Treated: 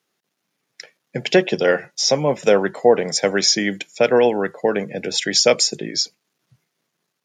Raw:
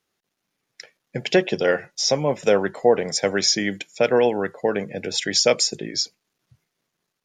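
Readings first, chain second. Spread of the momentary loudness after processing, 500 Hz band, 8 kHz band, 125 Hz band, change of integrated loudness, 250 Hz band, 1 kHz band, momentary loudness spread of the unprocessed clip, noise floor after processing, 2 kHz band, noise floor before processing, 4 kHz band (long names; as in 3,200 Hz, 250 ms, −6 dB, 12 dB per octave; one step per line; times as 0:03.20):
8 LU, +3.0 dB, +3.0 dB, +2.0 dB, +3.0 dB, +3.0 dB, +3.0 dB, 8 LU, −76 dBFS, +3.0 dB, −79 dBFS, +3.0 dB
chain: high-pass filter 120 Hz 24 dB per octave
level +3 dB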